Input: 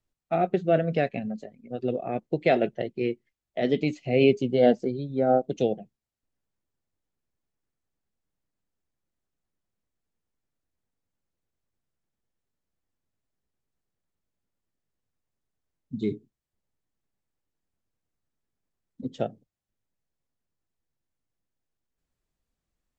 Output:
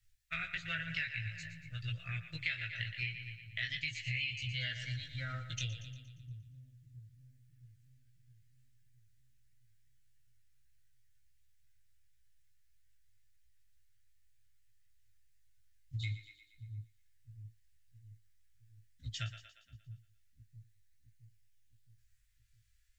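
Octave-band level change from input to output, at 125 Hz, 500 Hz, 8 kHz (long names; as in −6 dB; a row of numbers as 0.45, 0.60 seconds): −5.5 dB, −39.0 dB, can't be measured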